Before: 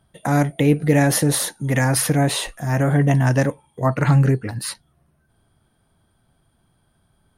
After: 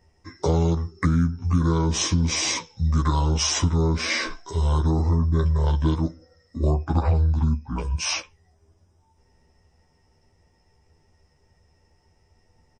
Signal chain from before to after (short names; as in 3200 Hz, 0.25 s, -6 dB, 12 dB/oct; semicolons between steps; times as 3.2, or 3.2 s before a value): comb 7.1 ms, depth 72%; compressor 6:1, threshold -18 dBFS, peak gain reduction 11 dB; speed mistake 78 rpm record played at 45 rpm